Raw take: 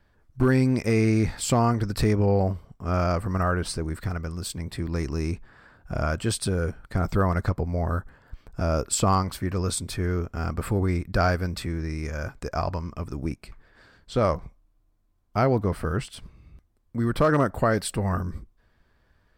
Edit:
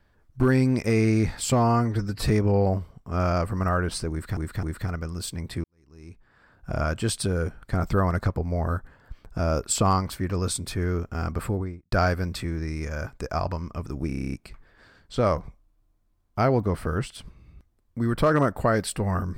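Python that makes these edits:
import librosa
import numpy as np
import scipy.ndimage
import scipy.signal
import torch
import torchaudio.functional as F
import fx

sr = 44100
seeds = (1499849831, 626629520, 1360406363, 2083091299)

y = fx.studio_fade_out(x, sr, start_s=10.57, length_s=0.57)
y = fx.edit(y, sr, fx.stretch_span(start_s=1.52, length_s=0.52, factor=1.5),
    fx.repeat(start_s=3.85, length_s=0.26, count=3),
    fx.fade_in_span(start_s=4.86, length_s=1.08, curve='qua'),
    fx.stutter(start_s=13.3, slice_s=0.03, count=9), tone=tone)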